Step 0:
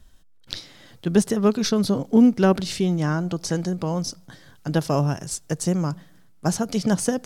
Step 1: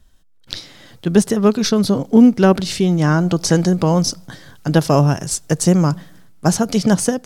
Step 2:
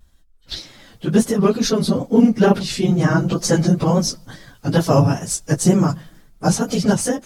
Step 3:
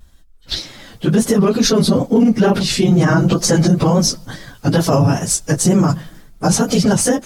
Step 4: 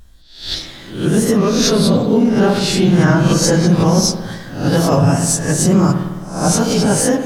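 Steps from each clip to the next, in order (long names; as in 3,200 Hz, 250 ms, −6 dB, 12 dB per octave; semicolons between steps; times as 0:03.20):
automatic gain control gain up to 13 dB; level −1 dB
random phases in long frames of 50 ms; tape wow and flutter 63 cents; level −1.5 dB
boost into a limiter +11 dB; level −4 dB
peak hold with a rise ahead of every peak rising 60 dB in 0.51 s; spring reverb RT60 1.3 s, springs 53 ms, chirp 45 ms, DRR 6 dB; level −2 dB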